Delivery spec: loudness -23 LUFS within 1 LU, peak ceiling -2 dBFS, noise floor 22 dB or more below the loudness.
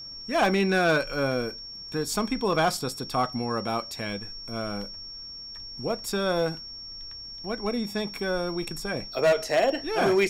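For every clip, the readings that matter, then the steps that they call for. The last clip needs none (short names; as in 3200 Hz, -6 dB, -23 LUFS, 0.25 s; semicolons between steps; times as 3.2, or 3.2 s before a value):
clipped 1.0%; flat tops at -16.5 dBFS; steady tone 5500 Hz; tone level -38 dBFS; loudness -28.0 LUFS; peak -16.5 dBFS; loudness target -23.0 LUFS
-> clip repair -16.5 dBFS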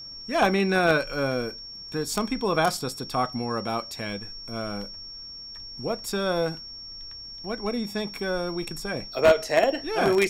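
clipped 0.0%; steady tone 5500 Hz; tone level -38 dBFS
-> notch 5500 Hz, Q 30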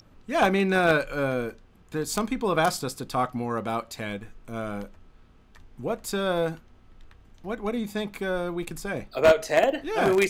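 steady tone none; loudness -26.5 LUFS; peak -7.5 dBFS; loudness target -23.0 LUFS
-> gain +3.5 dB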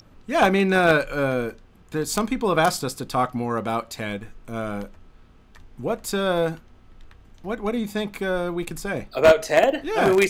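loudness -23.0 LUFS; peak -3.5 dBFS; noise floor -52 dBFS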